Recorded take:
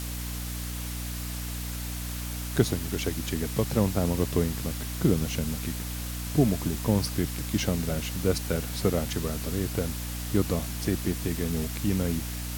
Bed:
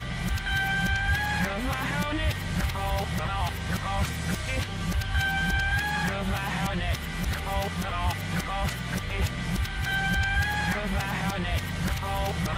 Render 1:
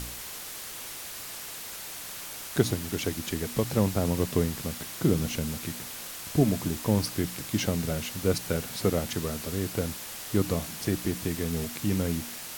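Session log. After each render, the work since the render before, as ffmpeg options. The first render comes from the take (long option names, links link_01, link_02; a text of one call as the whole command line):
ffmpeg -i in.wav -af "bandreject=frequency=60:width_type=h:width=4,bandreject=frequency=120:width_type=h:width=4,bandreject=frequency=180:width_type=h:width=4,bandreject=frequency=240:width_type=h:width=4,bandreject=frequency=300:width_type=h:width=4" out.wav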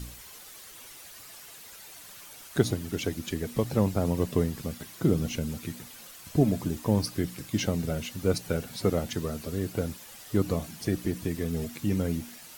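ffmpeg -i in.wav -af "afftdn=noise_reduction=10:noise_floor=-40" out.wav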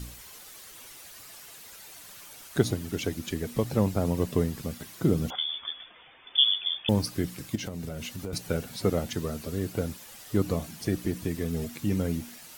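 ffmpeg -i in.wav -filter_complex "[0:a]asettb=1/sr,asplit=3[link_01][link_02][link_03];[link_01]atrim=end=5.304[link_04];[link_02]atrim=start=5.3:end=6.89,asetpts=PTS-STARTPTS,afade=type=in:duration=0.004:curve=qsin,afade=type=out:start_time=1.586:duration=0.004:curve=qsin,lowpass=frequency=3100:width_type=q:width=0.5098,lowpass=frequency=3100:width_type=q:width=0.6013,lowpass=frequency=3100:width_type=q:width=0.9,lowpass=frequency=3100:width_type=q:width=2.563,afreqshift=-3600[link_05];[link_03]atrim=start=6.886[link_06];[link_04][link_05]acrossfade=duration=0.004:curve1=hsin:curve2=qsin[link_07];[link_07][link_06]acrossfade=duration=0.004:curve1=qsin:curve2=hsin,asettb=1/sr,asplit=3[link_08][link_09][link_10];[link_08]atrim=end=7.554[link_11];[link_09]atrim=start=7.55:end=8.33,asetpts=PTS-STARTPTS,afade=type=in:duration=0.004:curve=qsin,afade=type=out:start_time=0.776:duration=0.004:curve=qsin,acompressor=threshold=-31dB:ratio=6:attack=3.2:release=140:knee=1:detection=peak[link_12];[link_10]atrim=start=8.326[link_13];[link_11][link_12]acrossfade=duration=0.004:curve1=hsin:curve2=qsin[link_14];[link_14][link_13]acrossfade=duration=0.004:curve1=qsin:curve2=hsin" out.wav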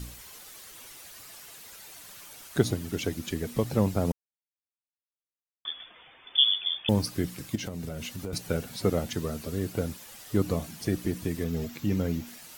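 ffmpeg -i in.wav -filter_complex "[0:a]asettb=1/sr,asplit=3[link_01][link_02][link_03];[link_01]atrim=end=11.444[link_04];[link_02]atrim=start=11.44:end=12.27,asetpts=PTS-STARTPTS,afade=type=in:duration=0.004:curve=qsin,afade=type=out:start_time=0.826:duration=0.004:curve=qsin,equalizer=frequency=9600:width_type=o:width=0.34:gain=-14.5[link_05];[link_03]atrim=start=12.266[link_06];[link_04][link_05]acrossfade=duration=0.004:curve1=hsin:curve2=qsin[link_07];[link_07][link_06]acrossfade=duration=0.004:curve1=qsin:curve2=hsin,asplit=3[link_08][link_09][link_10];[link_08]atrim=end=4.12,asetpts=PTS-STARTPTS,afade=type=out:start_time=4.116:duration=0.004:curve=hsin[link_11];[link_09]atrim=start=4.12:end=5.65,asetpts=PTS-STARTPTS,volume=0[link_12];[link_10]atrim=start=5.65,asetpts=PTS-STARTPTS,afade=type=in:duration=0.004:curve=hsin[link_13];[link_11][link_12][link_13]concat=n=3:v=0:a=1" out.wav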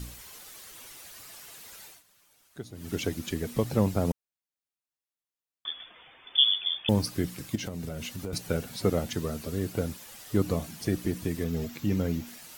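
ffmpeg -i in.wav -filter_complex "[0:a]asplit=3[link_01][link_02][link_03];[link_01]atrim=end=2.03,asetpts=PTS-STARTPTS,afade=type=out:start_time=1.84:duration=0.19:silence=0.141254[link_04];[link_02]atrim=start=2.03:end=2.73,asetpts=PTS-STARTPTS,volume=-17dB[link_05];[link_03]atrim=start=2.73,asetpts=PTS-STARTPTS,afade=type=in:duration=0.19:silence=0.141254[link_06];[link_04][link_05][link_06]concat=n=3:v=0:a=1" out.wav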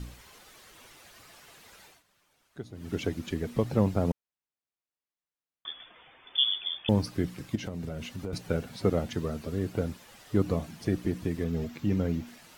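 ffmpeg -i in.wav -af "lowpass=frequency=2700:poles=1" out.wav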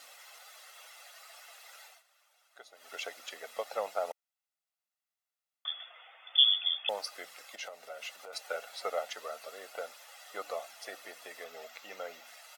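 ffmpeg -i in.wav -af "highpass=frequency=620:width=0.5412,highpass=frequency=620:width=1.3066,aecho=1:1:1.5:0.51" out.wav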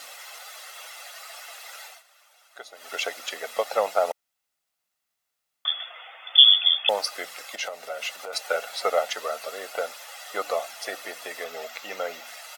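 ffmpeg -i in.wav -af "volume=11dB,alimiter=limit=-2dB:level=0:latency=1" out.wav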